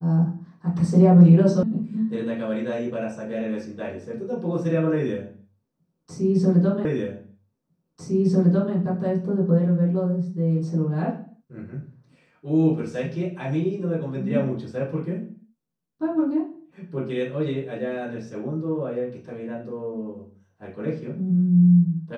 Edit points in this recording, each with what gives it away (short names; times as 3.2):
1.63 sound cut off
6.85 repeat of the last 1.9 s